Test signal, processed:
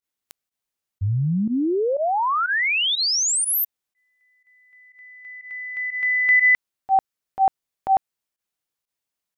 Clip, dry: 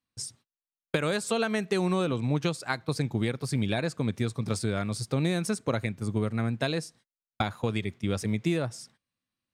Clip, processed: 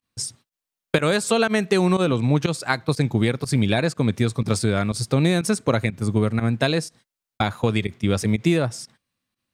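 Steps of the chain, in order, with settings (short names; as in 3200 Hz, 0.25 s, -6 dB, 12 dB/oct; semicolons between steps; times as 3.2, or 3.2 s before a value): pump 122 bpm, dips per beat 1, -18 dB, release 65 ms; gain +8 dB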